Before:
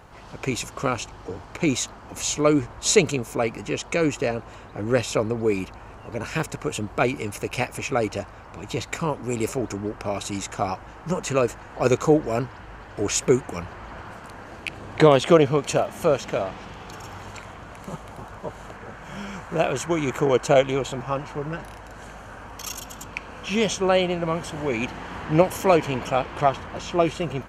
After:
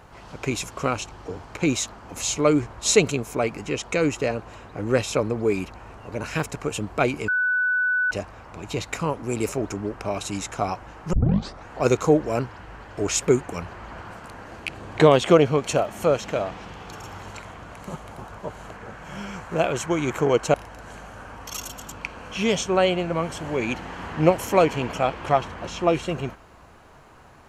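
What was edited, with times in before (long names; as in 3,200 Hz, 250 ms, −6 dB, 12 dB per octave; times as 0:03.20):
0:07.28–0:08.11: beep over 1,490 Hz −19 dBFS
0:11.13: tape start 0.54 s
0:20.54–0:21.66: remove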